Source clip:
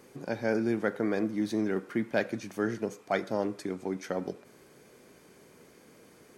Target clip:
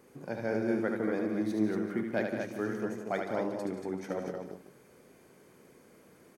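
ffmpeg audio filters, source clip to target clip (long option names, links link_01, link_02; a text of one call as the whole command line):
ffmpeg -i in.wav -filter_complex "[0:a]equalizer=frequency=4600:width=0.68:gain=-5,asplit=2[link_01][link_02];[link_02]aecho=0:1:74|145|178|234|384:0.562|0.211|0.316|0.531|0.158[link_03];[link_01][link_03]amix=inputs=2:normalize=0,volume=-4dB" out.wav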